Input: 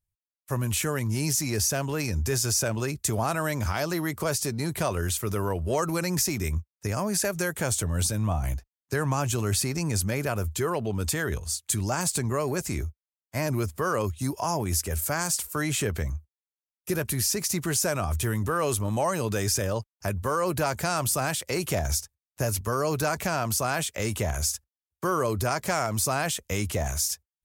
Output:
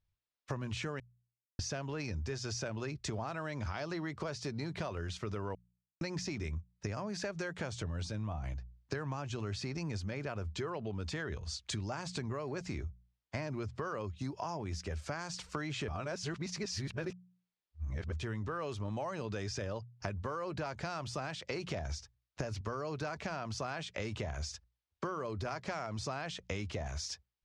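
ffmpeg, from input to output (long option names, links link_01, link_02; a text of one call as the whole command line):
ffmpeg -i in.wav -filter_complex "[0:a]asplit=7[link_01][link_02][link_03][link_04][link_05][link_06][link_07];[link_01]atrim=end=1,asetpts=PTS-STARTPTS,afade=type=out:start_time=0.996:duration=0.004:curve=hsin[link_08];[link_02]atrim=start=1:end=1.59,asetpts=PTS-STARTPTS,volume=0[link_09];[link_03]atrim=start=1.59:end=5.55,asetpts=PTS-STARTPTS,afade=type=in:duration=0.004:curve=hsin,afade=type=out:start_time=3.956:duration=0.004:curve=hsin[link_10];[link_04]atrim=start=5.55:end=6.01,asetpts=PTS-STARTPTS,volume=0[link_11];[link_05]atrim=start=6.01:end=15.882,asetpts=PTS-STARTPTS,afade=type=in:duration=0.004:curve=hsin[link_12];[link_06]atrim=start=15.878:end=18.122,asetpts=PTS-STARTPTS,areverse[link_13];[link_07]atrim=start=18.118[link_14];[link_08][link_09][link_10][link_11][link_12]concat=n=5:v=0:a=1[link_15];[link_15][link_13]acrossfade=duration=0.004:curve1=hsin:curve2=hsin[link_16];[link_16][link_14]acrossfade=duration=0.004:curve1=hsin:curve2=hsin,lowpass=frequency=5100:width=0.5412,lowpass=frequency=5100:width=1.3066,bandreject=frequency=60:width_type=h:width=6,bandreject=frequency=120:width_type=h:width=6,bandreject=frequency=180:width_type=h:width=6,acompressor=threshold=-40dB:ratio=6,volume=3.5dB" out.wav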